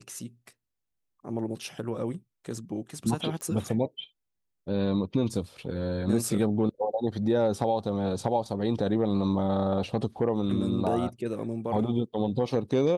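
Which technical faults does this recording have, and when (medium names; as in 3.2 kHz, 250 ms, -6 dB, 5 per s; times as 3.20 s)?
3.41 s: pop -24 dBFS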